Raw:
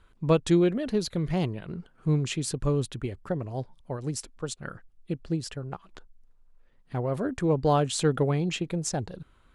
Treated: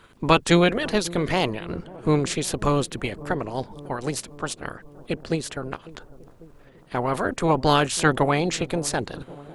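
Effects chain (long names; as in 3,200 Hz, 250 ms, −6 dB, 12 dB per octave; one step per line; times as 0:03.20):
ceiling on every frequency bin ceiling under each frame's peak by 19 dB
delay with a low-pass on its return 548 ms, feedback 63%, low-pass 690 Hz, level −18 dB
level +4.5 dB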